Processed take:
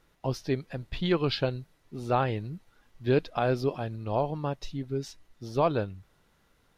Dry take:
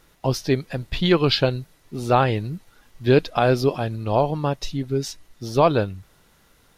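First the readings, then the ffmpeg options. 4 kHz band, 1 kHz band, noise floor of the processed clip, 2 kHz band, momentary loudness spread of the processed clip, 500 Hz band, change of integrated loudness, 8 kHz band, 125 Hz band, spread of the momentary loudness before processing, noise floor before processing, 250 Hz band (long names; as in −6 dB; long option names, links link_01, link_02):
−11.0 dB, −8.0 dB, −67 dBFS, −9.0 dB, 15 LU, −8.0 dB, −8.5 dB, below −10 dB, −8.0 dB, 15 LU, −58 dBFS, −8.0 dB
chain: -af "highshelf=frequency=4800:gain=-7.5,volume=-8dB"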